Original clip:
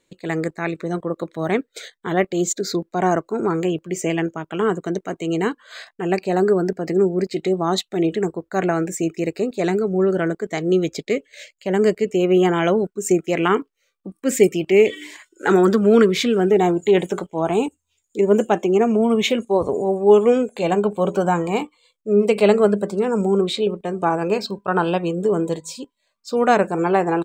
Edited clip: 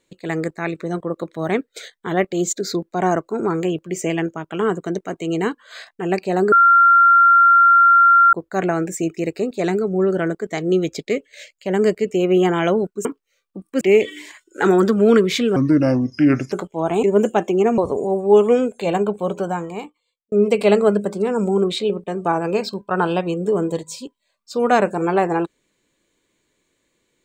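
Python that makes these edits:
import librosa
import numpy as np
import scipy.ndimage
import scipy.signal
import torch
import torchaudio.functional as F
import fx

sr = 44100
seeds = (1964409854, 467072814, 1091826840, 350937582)

y = fx.edit(x, sr, fx.bleep(start_s=6.52, length_s=1.81, hz=1380.0, db=-8.0),
    fx.cut(start_s=13.05, length_s=0.5),
    fx.cut(start_s=14.31, length_s=0.35),
    fx.speed_span(start_s=16.41, length_s=0.7, speed=0.73),
    fx.cut(start_s=17.62, length_s=0.56),
    fx.cut(start_s=18.93, length_s=0.62),
    fx.fade_out_span(start_s=20.66, length_s=1.43), tone=tone)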